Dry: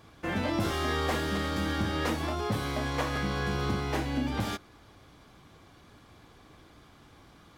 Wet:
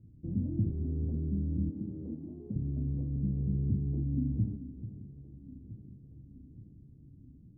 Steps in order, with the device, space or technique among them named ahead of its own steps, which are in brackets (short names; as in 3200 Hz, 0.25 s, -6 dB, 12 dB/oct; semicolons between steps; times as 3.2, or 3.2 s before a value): 1.69–2.56 HPF 240 Hz 12 dB/oct; the neighbour's flat through the wall (LPF 260 Hz 24 dB/oct; bell 120 Hz +5.5 dB 0.77 oct); echo with dull and thin repeats by turns 0.436 s, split 1600 Hz, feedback 75%, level -12.5 dB